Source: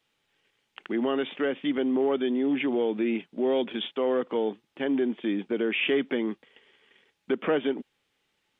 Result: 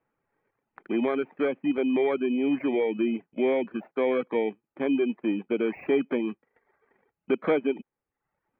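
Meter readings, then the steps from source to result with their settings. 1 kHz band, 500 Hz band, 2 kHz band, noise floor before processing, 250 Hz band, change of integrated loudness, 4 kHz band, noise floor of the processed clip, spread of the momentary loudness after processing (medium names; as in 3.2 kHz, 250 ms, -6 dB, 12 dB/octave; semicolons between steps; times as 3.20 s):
0.0 dB, +1.0 dB, -2.5 dB, -76 dBFS, +0.5 dB, +0.5 dB, no reading, under -85 dBFS, 6 LU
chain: bit-reversed sample order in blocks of 16 samples; elliptic low-pass 2.7 kHz, stop band 50 dB; reverb removal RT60 0.67 s; trim +3 dB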